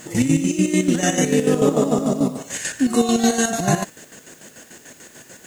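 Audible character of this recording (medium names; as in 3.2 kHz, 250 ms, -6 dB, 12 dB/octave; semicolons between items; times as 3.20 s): chopped level 6.8 Hz, depth 60%, duty 50%; a quantiser's noise floor 10-bit, dither triangular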